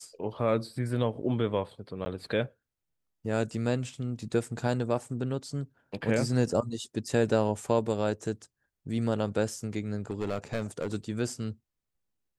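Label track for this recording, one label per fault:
2.050000	2.060000	dropout 10 ms
10.100000	10.940000	clipped -26 dBFS

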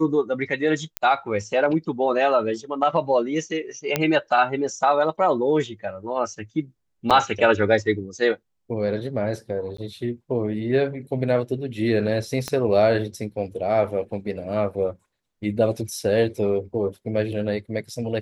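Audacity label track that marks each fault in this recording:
0.970000	0.970000	pop -6 dBFS
3.960000	3.960000	pop -5 dBFS
7.100000	7.110000	dropout 6.9 ms
9.770000	9.780000	dropout
12.480000	12.480000	pop -13 dBFS

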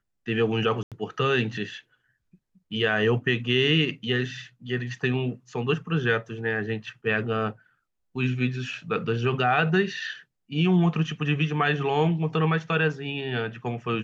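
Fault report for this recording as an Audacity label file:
0.830000	0.920000	dropout 87 ms

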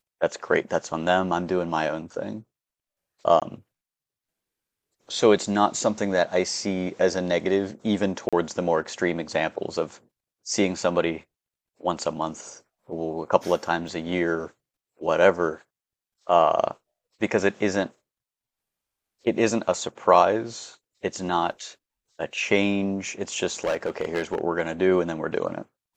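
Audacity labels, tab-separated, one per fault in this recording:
3.400000	3.420000	dropout 17 ms
8.290000	8.330000	dropout 36 ms
13.880000	13.880000	dropout 3.2 ms
23.640000	24.410000	clipped -19.5 dBFS

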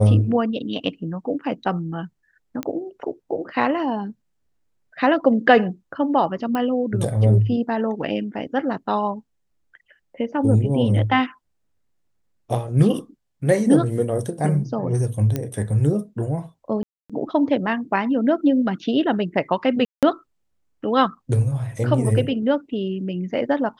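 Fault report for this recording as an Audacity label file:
2.630000	2.630000	pop -13 dBFS
6.550000	6.550000	pop -13 dBFS
15.360000	15.360000	pop -11 dBFS
16.830000	17.100000	dropout 266 ms
19.850000	20.030000	dropout 177 ms

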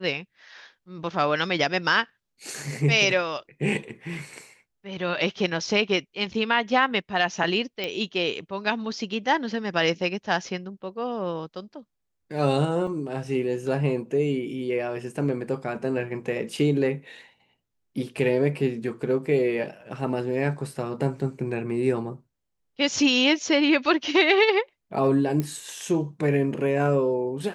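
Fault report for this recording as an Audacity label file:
7.840000	7.840000	pop -15 dBFS
12.870000	12.870000	dropout 2.8 ms
19.810000	19.810000	dropout 4.5 ms
25.400000	25.400000	pop -14 dBFS

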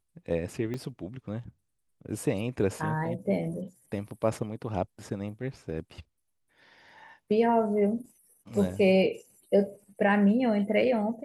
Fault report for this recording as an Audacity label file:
0.740000	0.740000	dropout 2.2 ms

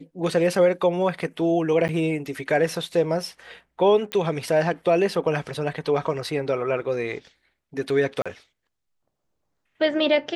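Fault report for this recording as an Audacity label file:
1.880000	1.890000	dropout 9.6 ms
4.120000	4.120000	pop -13 dBFS
8.220000	8.260000	dropout 36 ms

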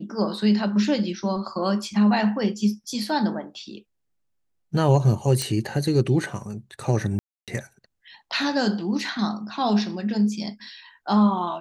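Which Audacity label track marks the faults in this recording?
5.420000	5.420000	pop -10 dBFS
7.190000	7.480000	dropout 287 ms

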